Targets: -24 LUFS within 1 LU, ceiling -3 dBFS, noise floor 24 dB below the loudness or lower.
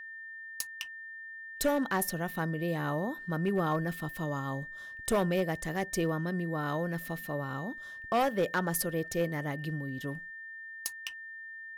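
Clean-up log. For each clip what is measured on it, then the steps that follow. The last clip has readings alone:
clipped samples 0.7%; clipping level -22.0 dBFS; steady tone 1.8 kHz; tone level -42 dBFS; loudness -33.5 LUFS; peak level -22.0 dBFS; loudness target -24.0 LUFS
-> clip repair -22 dBFS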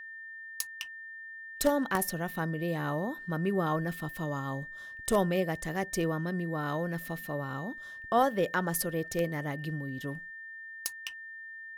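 clipped samples 0.0%; steady tone 1.8 kHz; tone level -42 dBFS
-> band-stop 1.8 kHz, Q 30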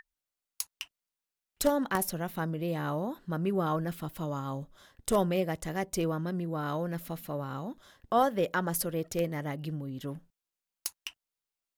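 steady tone not found; loudness -32.5 LUFS; peak level -12.5 dBFS; loudness target -24.0 LUFS
-> trim +8.5 dB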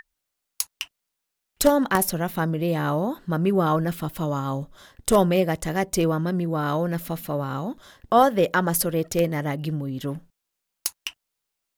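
loudness -24.0 LUFS; peak level -4.0 dBFS; noise floor -82 dBFS

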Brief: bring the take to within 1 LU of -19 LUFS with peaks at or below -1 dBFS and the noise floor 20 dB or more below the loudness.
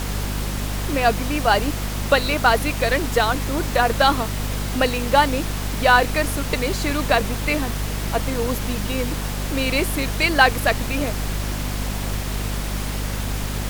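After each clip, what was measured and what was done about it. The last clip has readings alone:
hum 50 Hz; highest harmonic 250 Hz; hum level -24 dBFS; noise floor -27 dBFS; noise floor target -42 dBFS; loudness -21.5 LUFS; peak level -1.5 dBFS; loudness target -19.0 LUFS
-> hum notches 50/100/150/200/250 Hz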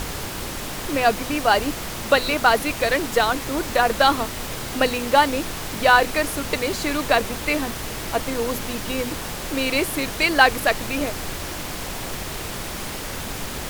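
hum not found; noise floor -31 dBFS; noise floor target -42 dBFS
-> noise print and reduce 11 dB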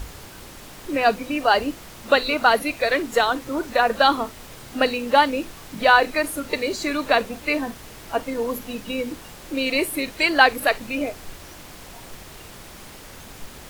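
noise floor -42 dBFS; loudness -21.5 LUFS; peak level -1.5 dBFS; loudness target -19.0 LUFS
-> trim +2.5 dB; peak limiter -1 dBFS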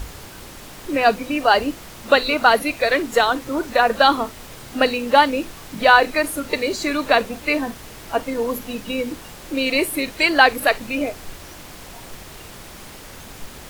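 loudness -19.0 LUFS; peak level -1.0 dBFS; noise floor -39 dBFS

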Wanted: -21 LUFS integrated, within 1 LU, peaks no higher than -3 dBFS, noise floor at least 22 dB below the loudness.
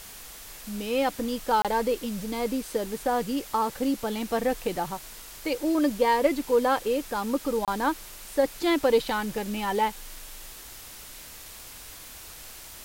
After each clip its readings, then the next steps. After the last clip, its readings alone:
dropouts 2; longest dropout 27 ms; noise floor -44 dBFS; noise floor target -49 dBFS; loudness -27.0 LUFS; peak level -10.0 dBFS; loudness target -21.0 LUFS
-> interpolate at 1.62/7.65 s, 27 ms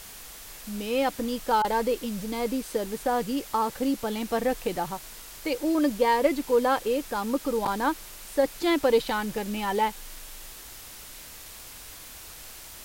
dropouts 0; noise floor -44 dBFS; noise floor target -49 dBFS
-> noise reduction 6 dB, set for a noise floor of -44 dBFS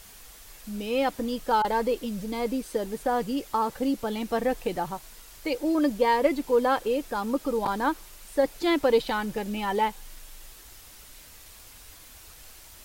noise floor -49 dBFS; loudness -27.0 LUFS; peak level -10.0 dBFS; loudness target -21.0 LUFS
-> trim +6 dB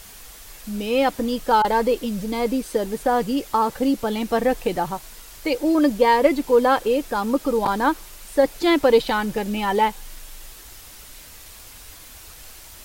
loudness -21.0 LUFS; peak level -4.0 dBFS; noise floor -43 dBFS

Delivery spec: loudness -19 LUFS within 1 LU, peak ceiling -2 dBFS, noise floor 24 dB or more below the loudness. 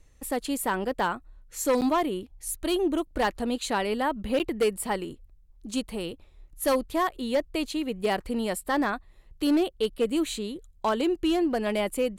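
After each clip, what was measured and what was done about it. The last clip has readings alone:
clipped samples 1.0%; clipping level -18.0 dBFS; dropouts 2; longest dropout 8.8 ms; loudness -28.0 LUFS; peak level -18.0 dBFS; loudness target -19.0 LUFS
-> clip repair -18 dBFS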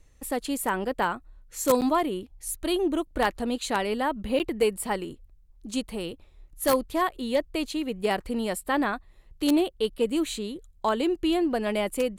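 clipped samples 0.0%; dropouts 2; longest dropout 8.8 ms
-> interpolate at 1.81/4.39 s, 8.8 ms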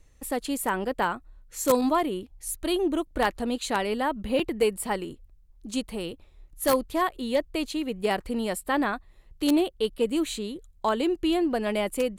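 dropouts 0; loudness -27.5 LUFS; peak level -9.0 dBFS; loudness target -19.0 LUFS
-> trim +8.5 dB; peak limiter -2 dBFS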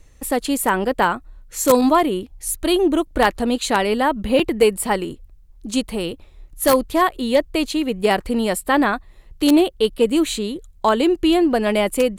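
loudness -19.0 LUFS; peak level -2.0 dBFS; noise floor -48 dBFS

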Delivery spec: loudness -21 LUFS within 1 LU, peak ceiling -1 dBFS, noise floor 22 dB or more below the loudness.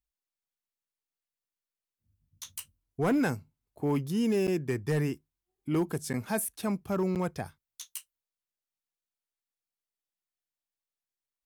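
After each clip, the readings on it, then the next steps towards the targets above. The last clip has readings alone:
clipped samples 0.2%; clipping level -21.0 dBFS; dropouts 3; longest dropout 8.1 ms; loudness -31.0 LUFS; peak level -21.0 dBFS; loudness target -21.0 LUFS
-> clip repair -21 dBFS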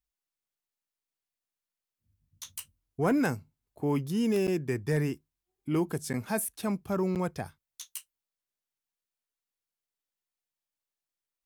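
clipped samples 0.0%; dropouts 3; longest dropout 8.1 ms
-> interpolate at 4.47/6.13/7.15 s, 8.1 ms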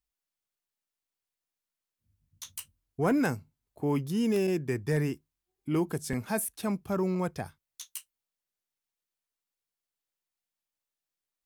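dropouts 0; loudness -30.5 LUFS; peak level -14.0 dBFS; loudness target -21.0 LUFS
-> trim +9.5 dB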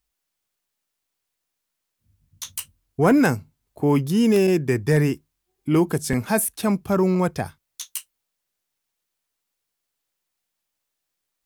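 loudness -21.0 LUFS; peak level -4.5 dBFS; noise floor -81 dBFS

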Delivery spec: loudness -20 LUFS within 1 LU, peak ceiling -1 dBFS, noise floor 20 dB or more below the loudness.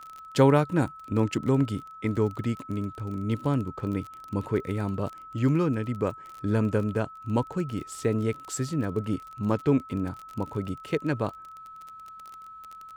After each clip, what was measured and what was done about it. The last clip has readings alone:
tick rate 30 per s; steady tone 1.3 kHz; tone level -42 dBFS; loudness -28.0 LUFS; peak level -7.0 dBFS; loudness target -20.0 LUFS
-> de-click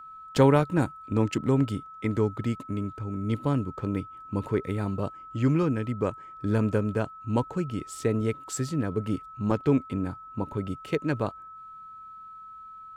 tick rate 0.39 per s; steady tone 1.3 kHz; tone level -42 dBFS
-> band-stop 1.3 kHz, Q 30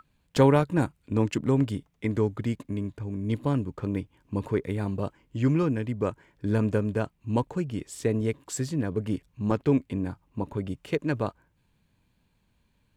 steady tone not found; loudness -28.5 LUFS; peak level -7.0 dBFS; loudness target -20.0 LUFS
-> trim +8.5 dB; peak limiter -1 dBFS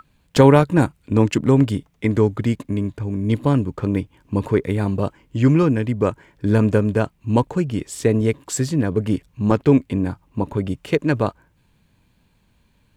loudness -20.0 LUFS; peak level -1.0 dBFS; noise floor -62 dBFS

